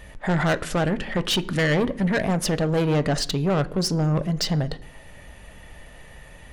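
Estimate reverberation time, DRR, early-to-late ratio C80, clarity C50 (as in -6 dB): 0.65 s, 11.0 dB, 22.0 dB, 19.0 dB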